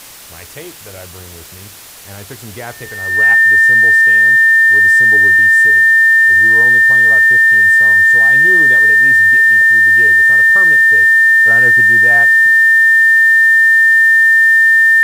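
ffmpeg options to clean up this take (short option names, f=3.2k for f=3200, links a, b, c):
-af "adeclick=t=4,bandreject=f=1.8k:w=30,afftdn=nr=25:nf=-33"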